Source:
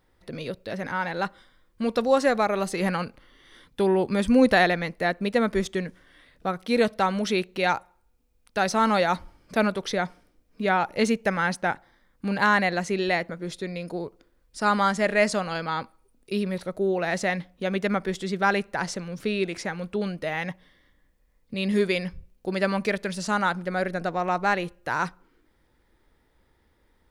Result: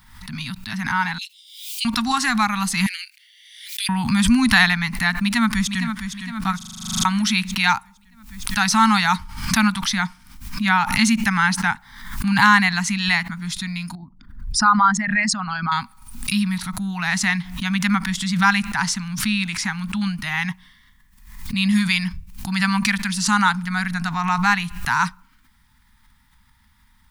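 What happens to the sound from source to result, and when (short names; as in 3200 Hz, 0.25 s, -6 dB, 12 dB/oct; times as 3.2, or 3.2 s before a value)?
1.18–1.85 steep high-pass 2500 Hz 72 dB/oct
2.86–3.89 steep high-pass 2000 Hz 48 dB/oct
5.12–5.85 echo throw 0.46 s, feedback 50%, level -8.5 dB
6.57 stutter in place 0.04 s, 12 plays
13.95–15.72 formant sharpening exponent 2
whole clip: Chebyshev band-stop 230–920 Hz, order 3; high shelf 3900 Hz +5.5 dB; backwards sustainer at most 72 dB/s; gain +7.5 dB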